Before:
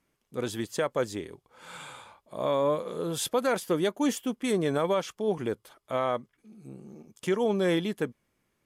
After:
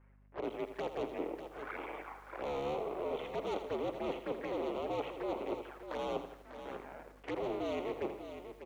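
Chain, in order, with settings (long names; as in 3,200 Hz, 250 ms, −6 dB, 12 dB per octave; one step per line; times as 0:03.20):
sub-harmonics by changed cycles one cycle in 2, muted
single-sideband voice off tune −71 Hz 430–2,300 Hz
soft clipping −31 dBFS, distortion −9 dB
reversed playback
downward compressor 16 to 1, threshold −44 dBFS, peak gain reduction 11.5 dB
reversed playback
flanger swept by the level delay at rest 7.9 ms, full sweep at −46 dBFS
mains hum 50 Hz, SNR 23 dB
on a send: single-tap delay 596 ms −10 dB
on the sum: feedback echo at a low word length 82 ms, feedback 55%, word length 12 bits, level −10 dB
level +11 dB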